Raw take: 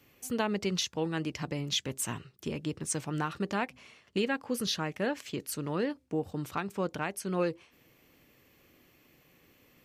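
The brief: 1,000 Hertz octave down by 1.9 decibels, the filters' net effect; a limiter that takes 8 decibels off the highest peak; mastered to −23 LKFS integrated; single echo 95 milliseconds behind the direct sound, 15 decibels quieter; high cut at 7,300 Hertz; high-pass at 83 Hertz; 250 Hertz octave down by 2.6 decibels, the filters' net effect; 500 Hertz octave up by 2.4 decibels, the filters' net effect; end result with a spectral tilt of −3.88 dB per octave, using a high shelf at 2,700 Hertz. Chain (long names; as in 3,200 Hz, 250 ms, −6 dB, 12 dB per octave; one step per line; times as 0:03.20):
high-pass filter 83 Hz
low-pass filter 7,300 Hz
parametric band 250 Hz −5 dB
parametric band 500 Hz +5 dB
parametric band 1,000 Hz −4.5 dB
high-shelf EQ 2,700 Hz +4.5 dB
brickwall limiter −23.5 dBFS
single-tap delay 95 ms −15 dB
level +13 dB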